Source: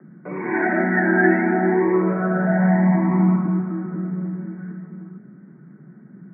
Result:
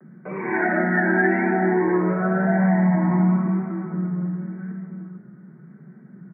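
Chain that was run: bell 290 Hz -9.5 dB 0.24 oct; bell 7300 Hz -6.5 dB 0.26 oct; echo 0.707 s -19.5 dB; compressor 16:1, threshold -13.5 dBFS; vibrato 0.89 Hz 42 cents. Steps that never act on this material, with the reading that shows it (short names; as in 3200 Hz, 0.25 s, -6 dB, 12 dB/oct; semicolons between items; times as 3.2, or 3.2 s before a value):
bell 7300 Hz: input band ends at 1500 Hz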